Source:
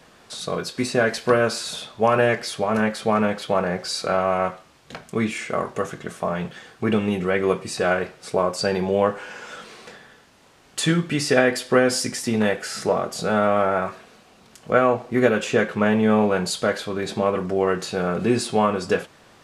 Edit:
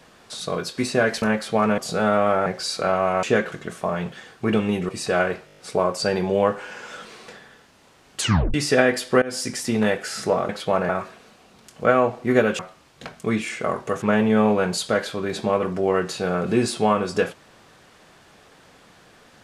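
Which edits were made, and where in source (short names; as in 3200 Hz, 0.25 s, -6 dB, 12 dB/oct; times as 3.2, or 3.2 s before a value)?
1.22–2.75 cut
3.31–3.71 swap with 13.08–13.76
4.48–5.91 swap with 15.46–15.75
7.28–7.6 cut
8.17 stutter 0.02 s, 7 plays
10.79 tape stop 0.34 s
11.81–12.24 fade in equal-power, from -21.5 dB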